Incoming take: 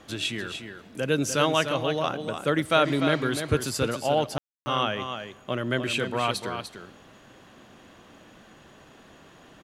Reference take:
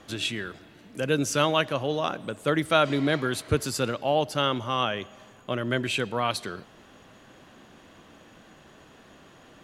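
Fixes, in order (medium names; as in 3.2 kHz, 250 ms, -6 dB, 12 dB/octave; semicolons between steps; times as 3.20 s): room tone fill 4.38–4.66 s; inverse comb 297 ms -8 dB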